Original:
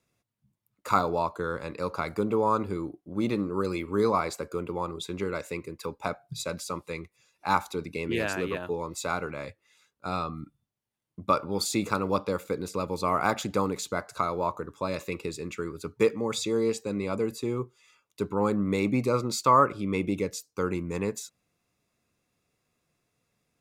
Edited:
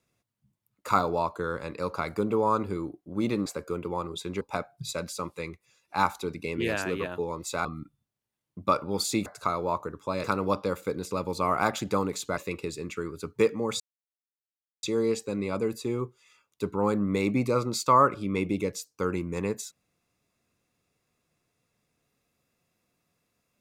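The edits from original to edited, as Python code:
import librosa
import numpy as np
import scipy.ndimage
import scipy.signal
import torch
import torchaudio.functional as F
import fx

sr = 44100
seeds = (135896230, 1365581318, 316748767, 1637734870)

y = fx.edit(x, sr, fx.cut(start_s=3.46, length_s=0.84),
    fx.cut(start_s=5.25, length_s=0.67),
    fx.cut(start_s=9.16, length_s=1.1),
    fx.move(start_s=14.0, length_s=0.98, to_s=11.87),
    fx.insert_silence(at_s=16.41, length_s=1.03), tone=tone)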